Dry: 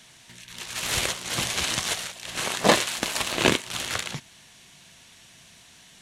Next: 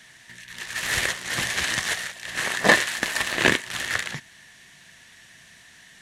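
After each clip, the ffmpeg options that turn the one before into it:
-af "equalizer=f=1.8k:w=4:g=14,volume=-1.5dB"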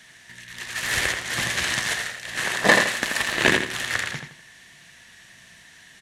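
-filter_complex "[0:a]asplit=2[a][b];[b]adelay=83,lowpass=f=4.5k:p=1,volume=-5dB,asplit=2[c][d];[d]adelay=83,lowpass=f=4.5k:p=1,volume=0.33,asplit=2[e][f];[f]adelay=83,lowpass=f=4.5k:p=1,volume=0.33,asplit=2[g][h];[h]adelay=83,lowpass=f=4.5k:p=1,volume=0.33[i];[a][c][e][g][i]amix=inputs=5:normalize=0"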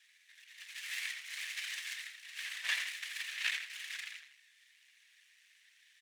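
-af "afftfilt=real='hypot(re,im)*cos(2*PI*random(0))':imag='hypot(re,im)*sin(2*PI*random(1))':win_size=512:overlap=0.75,aeval=exprs='max(val(0),0)':c=same,highpass=f=2.3k:t=q:w=2.4,volume=-8.5dB"

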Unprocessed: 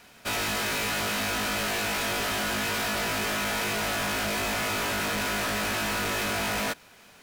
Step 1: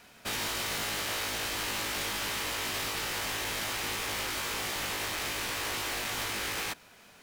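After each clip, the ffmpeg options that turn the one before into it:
-af "afftfilt=real='re*lt(hypot(re,im),0.0891)':imag='im*lt(hypot(re,im),0.0891)':win_size=1024:overlap=0.75,volume=-2.5dB"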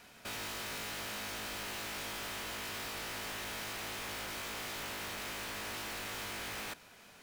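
-af "asoftclip=type=hard:threshold=-39dB,volume=-1.5dB"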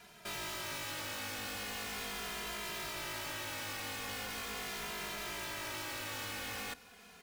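-filter_complex "[0:a]asplit=2[a][b];[b]adelay=2.5,afreqshift=-0.4[c];[a][c]amix=inputs=2:normalize=1,volume=3dB"

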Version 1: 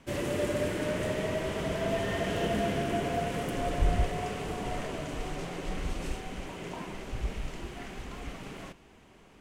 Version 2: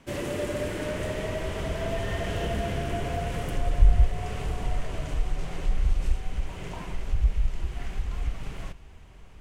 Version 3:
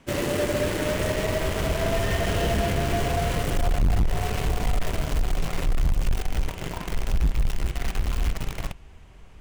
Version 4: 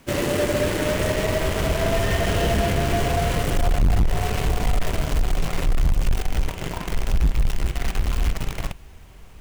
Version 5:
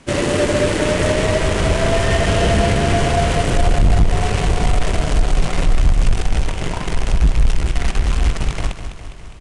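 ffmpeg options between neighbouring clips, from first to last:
-filter_complex "[0:a]asubboost=boost=7.5:cutoff=90,asplit=2[a][b];[b]acompressor=threshold=-27dB:ratio=6,volume=2dB[c];[a][c]amix=inputs=2:normalize=0,volume=-6dB"
-filter_complex "[0:a]asplit=2[a][b];[b]acrusher=bits=4:mix=0:aa=0.000001,volume=-4dB[c];[a][c]amix=inputs=2:normalize=0,volume=18dB,asoftclip=hard,volume=-18dB,volume=1dB"
-af "acrusher=bits=9:mix=0:aa=0.000001,volume=3dB"
-af "aresample=22050,aresample=44100,aecho=1:1:204|408|612|816|1020|1224|1428:0.316|0.19|0.114|0.0683|0.041|0.0246|0.0148,volume=5dB"

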